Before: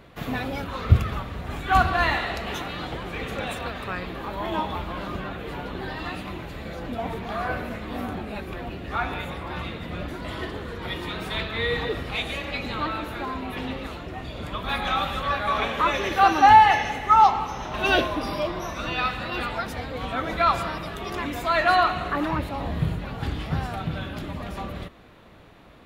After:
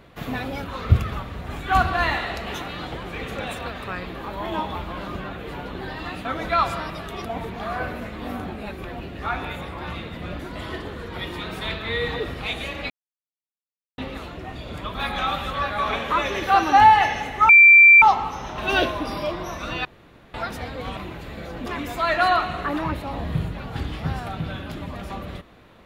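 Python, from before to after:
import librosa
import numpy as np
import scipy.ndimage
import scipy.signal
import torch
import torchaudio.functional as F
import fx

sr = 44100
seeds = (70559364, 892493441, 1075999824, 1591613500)

y = fx.edit(x, sr, fx.swap(start_s=6.25, length_s=0.69, other_s=20.13, other_length_s=1.0),
    fx.silence(start_s=12.59, length_s=1.08),
    fx.insert_tone(at_s=17.18, length_s=0.53, hz=2350.0, db=-6.5),
    fx.room_tone_fill(start_s=19.01, length_s=0.49), tone=tone)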